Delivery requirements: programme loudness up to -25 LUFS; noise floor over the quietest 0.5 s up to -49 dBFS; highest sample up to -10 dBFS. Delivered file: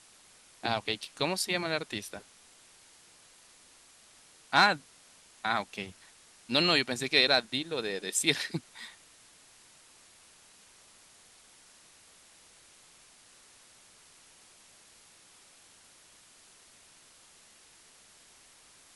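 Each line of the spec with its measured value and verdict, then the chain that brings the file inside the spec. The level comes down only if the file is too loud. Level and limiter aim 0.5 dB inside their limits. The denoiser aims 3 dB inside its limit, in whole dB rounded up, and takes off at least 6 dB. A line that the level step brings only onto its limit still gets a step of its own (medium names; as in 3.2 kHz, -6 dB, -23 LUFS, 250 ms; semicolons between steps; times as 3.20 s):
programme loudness -28.5 LUFS: pass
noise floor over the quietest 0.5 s -58 dBFS: pass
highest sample -8.0 dBFS: fail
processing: peak limiter -10.5 dBFS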